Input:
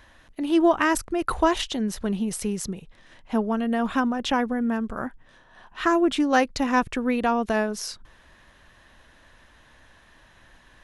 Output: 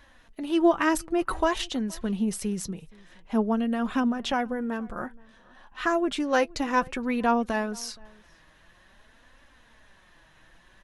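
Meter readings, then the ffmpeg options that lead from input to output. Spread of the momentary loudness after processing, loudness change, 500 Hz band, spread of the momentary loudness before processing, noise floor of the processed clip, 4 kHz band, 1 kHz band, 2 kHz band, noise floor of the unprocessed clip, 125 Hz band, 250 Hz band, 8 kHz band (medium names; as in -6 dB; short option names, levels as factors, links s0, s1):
12 LU, -2.5 dB, -2.0 dB, 12 LU, -58 dBFS, -3.0 dB, -3.0 dB, -3.0 dB, -56 dBFS, -2.0 dB, -2.5 dB, -3.0 dB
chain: -filter_complex "[0:a]flanger=delay=3.5:depth=3:regen=45:speed=0.53:shape=triangular,asplit=2[s0][s1];[s1]adelay=472.3,volume=0.0562,highshelf=f=4000:g=-10.6[s2];[s0][s2]amix=inputs=2:normalize=0,volume=1.12"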